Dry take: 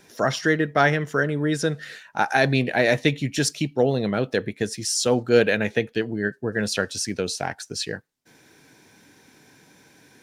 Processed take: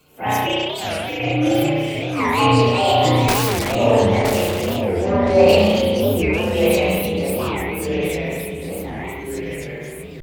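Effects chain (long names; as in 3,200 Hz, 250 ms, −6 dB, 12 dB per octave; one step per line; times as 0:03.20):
partials spread apart or drawn together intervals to 126%
0:00.49–0:01.20: inverse Chebyshev high-pass filter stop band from 870 Hz, stop band 70 dB
spring reverb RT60 1.2 s, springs 33 ms, chirp 40 ms, DRR −5 dB
0:03.28–0:03.76: wrap-around overflow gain 21.5 dB
transient designer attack −7 dB, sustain +7 dB
delay with pitch and tempo change per echo 565 ms, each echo −2 semitones, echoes 3, each echo −6 dB
0:04.82–0:05.49: high-frequency loss of the air 110 metres
wow of a warped record 45 rpm, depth 250 cents
level +2 dB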